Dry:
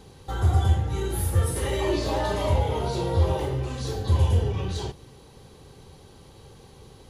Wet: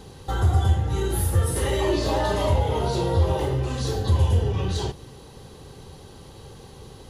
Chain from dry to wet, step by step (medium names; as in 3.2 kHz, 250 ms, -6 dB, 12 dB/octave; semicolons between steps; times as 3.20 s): in parallel at +2 dB: compression, threshold -27 dBFS, peak gain reduction 12 dB; on the sum: band-stop 2.3 kHz, Q 17; trim -2 dB